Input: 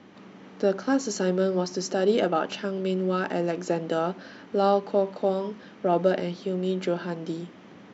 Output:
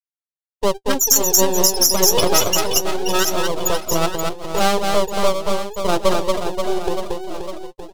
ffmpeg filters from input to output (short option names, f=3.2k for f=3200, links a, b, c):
-filter_complex "[0:a]highpass=f=290:w=0.5412,highpass=f=290:w=1.3066,aemphasis=mode=production:type=75fm,afftfilt=real='re*gte(hypot(re,im),0.158)':imag='im*gte(hypot(re,im),0.158)':win_size=1024:overlap=0.75,flanger=delay=3.7:depth=8.5:regen=42:speed=0.28:shape=triangular,aeval=exprs='max(val(0),0)':c=same,aexciter=amount=6.5:drive=3.4:freq=2.9k,asplit=2[a][b];[b]aecho=0:1:230|529|917.7|1423|2080:0.631|0.398|0.251|0.158|0.1[c];[a][c]amix=inputs=2:normalize=0,alimiter=level_in=15dB:limit=-1dB:release=50:level=0:latency=1,volume=-1dB"